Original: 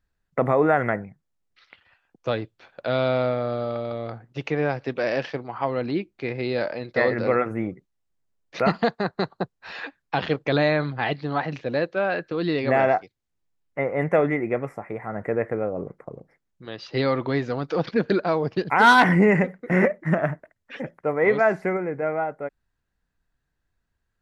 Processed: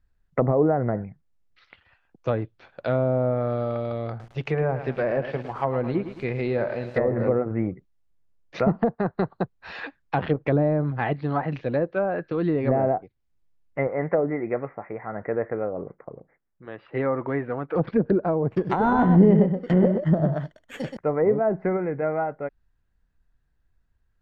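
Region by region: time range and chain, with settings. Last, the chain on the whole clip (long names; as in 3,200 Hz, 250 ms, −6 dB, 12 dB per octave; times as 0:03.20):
0:04.09–0:07.26: notch filter 290 Hz, Q 6.2 + feedback echo at a low word length 107 ms, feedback 55%, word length 7 bits, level −11 dB
0:13.87–0:17.76: low-pass filter 2,200 Hz 24 dB per octave + low-shelf EQ 200 Hz −11.5 dB
0:18.50–0:20.97: sample-rate reduction 5,000 Hz + single-tap delay 125 ms −6 dB
whole clip: high-shelf EQ 5,500 Hz −9 dB; treble cut that deepens with the level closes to 650 Hz, closed at −18 dBFS; low-shelf EQ 100 Hz +11 dB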